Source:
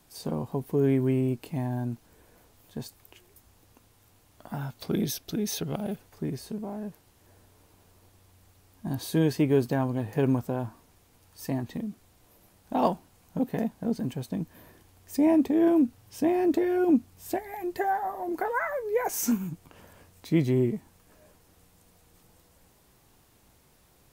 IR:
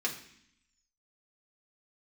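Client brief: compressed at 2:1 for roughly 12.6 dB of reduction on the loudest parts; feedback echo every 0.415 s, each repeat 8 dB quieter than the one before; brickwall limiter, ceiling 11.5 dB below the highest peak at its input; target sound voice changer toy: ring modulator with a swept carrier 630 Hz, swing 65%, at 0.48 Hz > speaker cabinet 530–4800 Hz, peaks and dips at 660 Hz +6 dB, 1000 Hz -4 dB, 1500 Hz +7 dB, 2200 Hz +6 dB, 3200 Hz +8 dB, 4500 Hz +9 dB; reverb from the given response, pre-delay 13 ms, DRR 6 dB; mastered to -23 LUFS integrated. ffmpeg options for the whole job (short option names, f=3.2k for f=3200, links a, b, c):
-filter_complex "[0:a]acompressor=threshold=-42dB:ratio=2,alimiter=level_in=11.5dB:limit=-24dB:level=0:latency=1,volume=-11.5dB,aecho=1:1:415|830|1245|1660|2075:0.398|0.159|0.0637|0.0255|0.0102,asplit=2[a][b];[1:a]atrim=start_sample=2205,adelay=13[c];[b][c]afir=irnorm=-1:irlink=0,volume=-11.5dB[d];[a][d]amix=inputs=2:normalize=0,aeval=exprs='val(0)*sin(2*PI*630*n/s+630*0.65/0.48*sin(2*PI*0.48*n/s))':c=same,highpass=530,equalizer=f=660:t=q:w=4:g=6,equalizer=f=1k:t=q:w=4:g=-4,equalizer=f=1.5k:t=q:w=4:g=7,equalizer=f=2.2k:t=q:w=4:g=6,equalizer=f=3.2k:t=q:w=4:g=8,equalizer=f=4.5k:t=q:w=4:g=9,lowpass=f=4.8k:w=0.5412,lowpass=f=4.8k:w=1.3066,volume=22.5dB"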